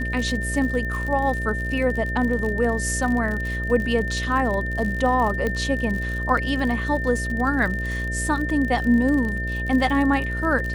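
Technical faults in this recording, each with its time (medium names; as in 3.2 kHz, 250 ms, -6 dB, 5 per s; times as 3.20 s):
buzz 60 Hz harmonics 11 -28 dBFS
crackle 54 per s -28 dBFS
whine 1.8 kHz -28 dBFS
5.47 s: pop -13 dBFS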